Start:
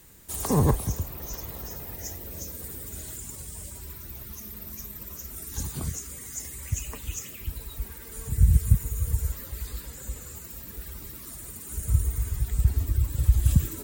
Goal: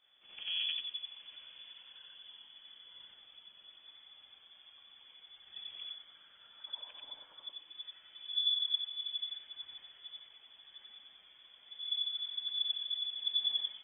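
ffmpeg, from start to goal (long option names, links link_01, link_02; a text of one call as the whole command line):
ffmpeg -i in.wav -af "afftfilt=real='re':imag='-im':win_size=8192:overlap=0.75,aemphasis=mode=production:type=cd,lowpass=frequency=3000:width_type=q:width=0.5098,lowpass=frequency=3000:width_type=q:width=0.6013,lowpass=frequency=3000:width_type=q:width=0.9,lowpass=frequency=3000:width_type=q:width=2.563,afreqshift=-3500,volume=-9dB" out.wav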